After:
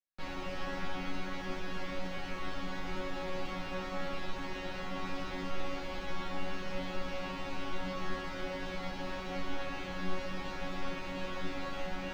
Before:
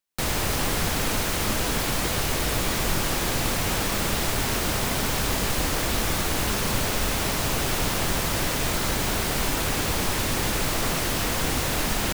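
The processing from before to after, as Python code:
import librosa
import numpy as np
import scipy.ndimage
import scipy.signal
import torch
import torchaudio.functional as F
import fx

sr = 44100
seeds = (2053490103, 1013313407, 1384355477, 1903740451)

y = fx.air_absorb(x, sr, metres=230.0)
y = fx.resonator_bank(y, sr, root=54, chord='fifth', decay_s=0.47)
y = y * 10.0 ** (6.0 / 20.0)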